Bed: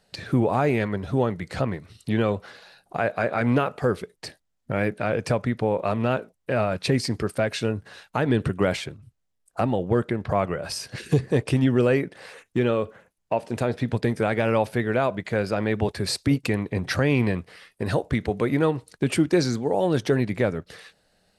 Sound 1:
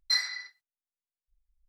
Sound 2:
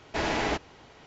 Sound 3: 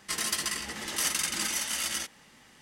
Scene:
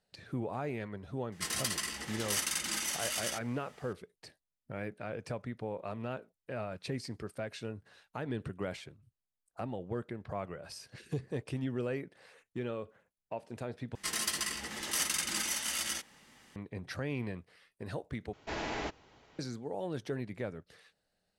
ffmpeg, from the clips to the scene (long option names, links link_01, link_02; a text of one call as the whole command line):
ffmpeg -i bed.wav -i cue0.wav -i cue1.wav -i cue2.wav -filter_complex "[3:a]asplit=2[link_01][link_02];[0:a]volume=-15.5dB,asplit=3[link_03][link_04][link_05];[link_03]atrim=end=13.954[link_06];[link_02]atrim=end=2.61,asetpts=PTS-STARTPTS,volume=-3.5dB[link_07];[link_04]atrim=start=16.556:end=18.334[link_08];[2:a]atrim=end=1.06,asetpts=PTS-STARTPTS,volume=-9dB[link_09];[link_05]atrim=start=19.386[link_10];[link_01]atrim=end=2.61,asetpts=PTS-STARTPTS,volume=-4.5dB,afade=type=in:duration=0.004:curve=hsin,afade=type=out:start_time=2.606:duration=0.004:curve=hsin,adelay=1320[link_11];[link_06][link_07]acrossfade=duration=0.004:curve1=hsin:curve2=hsin[link_12];[link_12][link_08]acrossfade=duration=0.004:curve1=hsin:curve2=hsin[link_13];[link_13][link_09]acrossfade=duration=0.004:curve1=hsin:curve2=hsin[link_14];[link_14][link_10]acrossfade=duration=0.004:curve1=hsin:curve2=hsin[link_15];[link_15][link_11]amix=inputs=2:normalize=0" out.wav